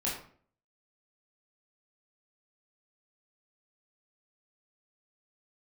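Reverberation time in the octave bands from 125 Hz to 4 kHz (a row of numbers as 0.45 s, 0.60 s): 0.60 s, 0.60 s, 0.55 s, 0.45 s, 0.45 s, 0.35 s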